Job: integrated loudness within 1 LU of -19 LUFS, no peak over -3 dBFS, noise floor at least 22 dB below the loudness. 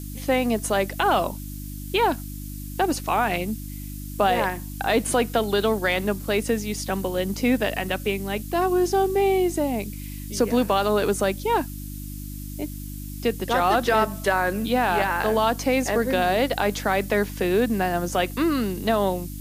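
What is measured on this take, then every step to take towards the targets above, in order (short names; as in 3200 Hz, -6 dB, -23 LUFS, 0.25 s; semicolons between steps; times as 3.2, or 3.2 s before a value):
hum 50 Hz; harmonics up to 300 Hz; hum level -32 dBFS; noise floor -35 dBFS; noise floor target -46 dBFS; loudness -23.5 LUFS; peak -5.5 dBFS; loudness target -19.0 LUFS
-> de-hum 50 Hz, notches 6; noise print and reduce 11 dB; gain +4.5 dB; limiter -3 dBFS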